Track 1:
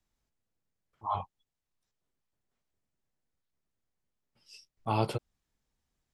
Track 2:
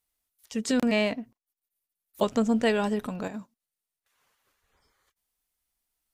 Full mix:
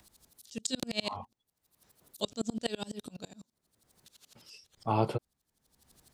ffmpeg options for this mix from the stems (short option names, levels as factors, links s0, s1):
-filter_complex "[0:a]highshelf=f=2000:g=-9.5,dynaudnorm=f=180:g=3:m=1.88,volume=0.708[s0];[1:a]equalizer=f=125:t=o:w=1:g=-3,equalizer=f=250:t=o:w=1:g=-4,equalizer=f=500:t=o:w=1:g=-4,equalizer=f=1000:t=o:w=1:g=-9,equalizer=f=2000:t=o:w=1:g=-10,equalizer=f=4000:t=o:w=1:g=11,equalizer=f=8000:t=o:w=1:g=6,aeval=exprs='val(0)*pow(10,-33*if(lt(mod(-12*n/s,1),2*abs(-12)/1000),1-mod(-12*n/s,1)/(2*abs(-12)/1000),(mod(-12*n/s,1)-2*abs(-12)/1000)/(1-2*abs(-12)/1000))/20)':c=same,volume=1.33,asplit=2[s1][s2];[s2]apad=whole_len=270531[s3];[s0][s3]sidechaincompress=threshold=0.00891:ratio=8:attack=25:release=276[s4];[s4][s1]amix=inputs=2:normalize=0,highpass=f=100:p=1,acompressor=mode=upward:threshold=0.00562:ratio=2.5"